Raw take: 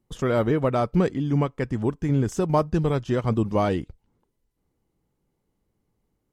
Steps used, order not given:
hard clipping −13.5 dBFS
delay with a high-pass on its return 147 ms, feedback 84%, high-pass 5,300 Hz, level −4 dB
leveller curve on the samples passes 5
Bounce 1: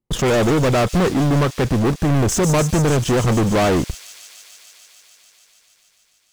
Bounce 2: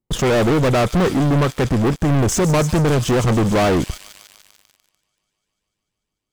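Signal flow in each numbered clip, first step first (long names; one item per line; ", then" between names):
hard clipping, then leveller curve on the samples, then delay with a high-pass on its return
hard clipping, then delay with a high-pass on its return, then leveller curve on the samples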